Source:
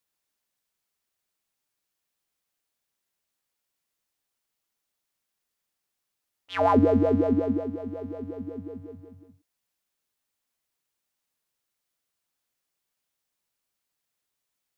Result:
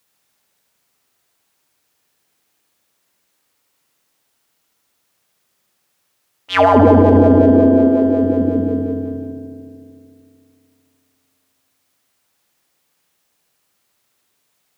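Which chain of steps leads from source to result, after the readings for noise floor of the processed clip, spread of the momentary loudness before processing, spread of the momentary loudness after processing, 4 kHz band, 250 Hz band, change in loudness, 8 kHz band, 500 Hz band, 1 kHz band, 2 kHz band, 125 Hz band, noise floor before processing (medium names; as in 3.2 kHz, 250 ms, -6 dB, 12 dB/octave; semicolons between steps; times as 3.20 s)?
-67 dBFS, 18 LU, 17 LU, +15.0 dB, +13.5 dB, +12.0 dB, no reading, +13.0 dB, +12.0 dB, +15.0 dB, +15.0 dB, -83 dBFS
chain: high-pass 76 Hz; filtered feedback delay 75 ms, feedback 83%, low-pass 3.5 kHz, level -5 dB; loudness maximiser +16 dB; trim -1 dB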